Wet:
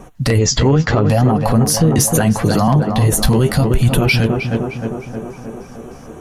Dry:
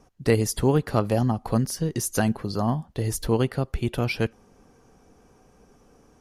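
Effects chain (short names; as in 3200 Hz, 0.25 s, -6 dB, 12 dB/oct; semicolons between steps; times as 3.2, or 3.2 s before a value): 0.38–1.1 steep low-pass 7300 Hz 96 dB/oct; 3.25–4.01 tone controls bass +8 dB, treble +10 dB; in parallel at -2.5 dB: compressor, threshold -31 dBFS, peak gain reduction 17.5 dB; on the sum: LFO notch square 3.3 Hz 380–5000 Hz; flange 0.75 Hz, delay 5.1 ms, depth 9.5 ms, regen +41%; soft clip -12 dBFS, distortion -22 dB; on a send: tape echo 0.31 s, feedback 75%, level -8.5 dB, low-pass 1700 Hz; on the sum: maximiser +23 dB; 1.98–2.68 three-band squash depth 40%; gain -4 dB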